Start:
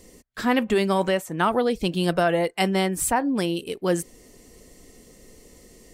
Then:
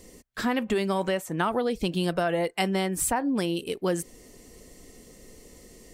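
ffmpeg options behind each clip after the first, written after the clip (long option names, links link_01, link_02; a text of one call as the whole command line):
ffmpeg -i in.wav -af "acompressor=threshold=-23dB:ratio=3" out.wav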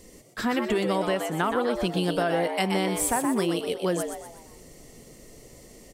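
ffmpeg -i in.wav -filter_complex "[0:a]asplit=6[link_01][link_02][link_03][link_04][link_05][link_06];[link_02]adelay=123,afreqshift=110,volume=-6dB[link_07];[link_03]adelay=246,afreqshift=220,volume=-13.5dB[link_08];[link_04]adelay=369,afreqshift=330,volume=-21.1dB[link_09];[link_05]adelay=492,afreqshift=440,volume=-28.6dB[link_10];[link_06]adelay=615,afreqshift=550,volume=-36.1dB[link_11];[link_01][link_07][link_08][link_09][link_10][link_11]amix=inputs=6:normalize=0" out.wav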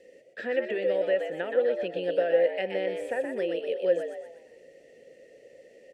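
ffmpeg -i in.wav -filter_complex "[0:a]asplit=3[link_01][link_02][link_03];[link_01]bandpass=frequency=530:width_type=q:width=8,volume=0dB[link_04];[link_02]bandpass=frequency=1840:width_type=q:width=8,volume=-6dB[link_05];[link_03]bandpass=frequency=2480:width_type=q:width=8,volume=-9dB[link_06];[link_04][link_05][link_06]amix=inputs=3:normalize=0,acrossover=split=3200[link_07][link_08];[link_08]acompressor=threshold=-60dB:ratio=4:attack=1:release=60[link_09];[link_07][link_09]amix=inputs=2:normalize=0,volume=7.5dB" out.wav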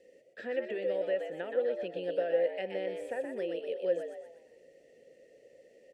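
ffmpeg -i in.wav -af "equalizer=frequency=1900:width_type=o:width=1.6:gain=-2.5,volume=-5.5dB" out.wav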